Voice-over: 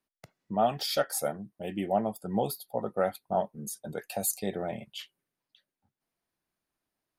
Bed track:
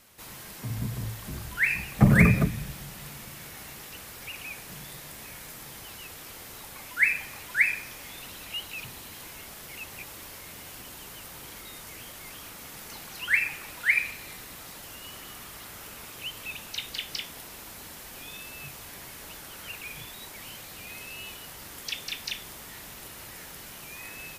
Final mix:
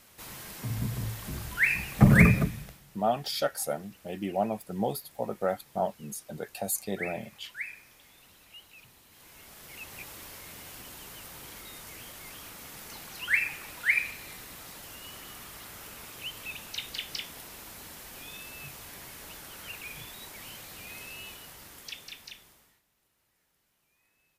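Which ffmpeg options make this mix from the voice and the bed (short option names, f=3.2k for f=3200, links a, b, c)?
-filter_complex "[0:a]adelay=2450,volume=-1dB[a];[1:a]volume=13dB,afade=t=out:st=2.22:d=0.59:silence=0.177828,afade=t=in:st=9.08:d=0.93:silence=0.223872,afade=t=out:st=21.05:d=1.77:silence=0.0354813[b];[a][b]amix=inputs=2:normalize=0"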